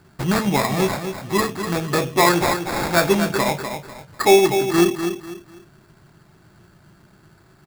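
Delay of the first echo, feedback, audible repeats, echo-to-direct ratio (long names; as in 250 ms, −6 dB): 247 ms, 29%, 3, −7.5 dB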